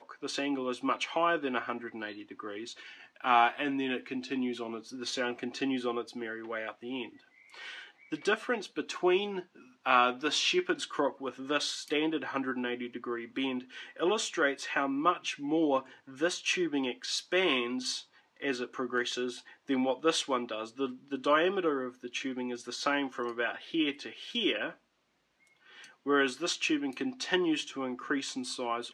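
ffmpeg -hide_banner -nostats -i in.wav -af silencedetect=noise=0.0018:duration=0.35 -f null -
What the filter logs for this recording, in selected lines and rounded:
silence_start: 24.77
silence_end: 25.47 | silence_duration: 0.70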